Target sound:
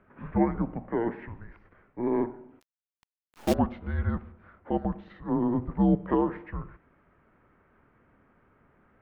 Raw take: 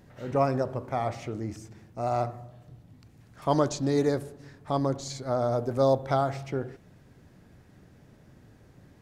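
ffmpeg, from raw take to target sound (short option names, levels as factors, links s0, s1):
-filter_complex "[0:a]highpass=f=450:t=q:w=0.5412,highpass=f=450:t=q:w=1.307,lowpass=f=2600:t=q:w=0.5176,lowpass=f=2600:t=q:w=0.7071,lowpass=f=2600:t=q:w=1.932,afreqshift=-350,asplit=3[s0][s1][s2];[s0]afade=t=out:st=2.59:d=0.02[s3];[s1]acrusher=bits=6:dc=4:mix=0:aa=0.000001,afade=t=in:st=2.59:d=0.02,afade=t=out:st=3.53:d=0.02[s4];[s2]afade=t=in:st=3.53:d=0.02[s5];[s3][s4][s5]amix=inputs=3:normalize=0,volume=1.26"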